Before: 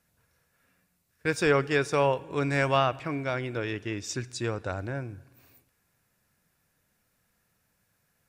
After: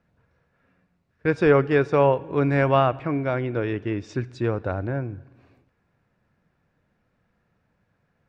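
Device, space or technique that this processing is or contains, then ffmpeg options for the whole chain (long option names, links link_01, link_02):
phone in a pocket: -af "lowpass=4000,equalizer=frequency=270:width_type=o:width=2.8:gain=2,highshelf=frequency=2300:gain=-12,volume=5.5dB"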